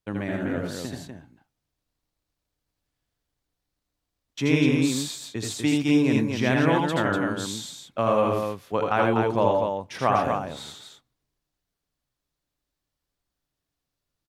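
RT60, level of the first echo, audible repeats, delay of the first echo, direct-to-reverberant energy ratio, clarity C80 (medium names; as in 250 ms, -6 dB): no reverb, -3.5 dB, 2, 79 ms, no reverb, no reverb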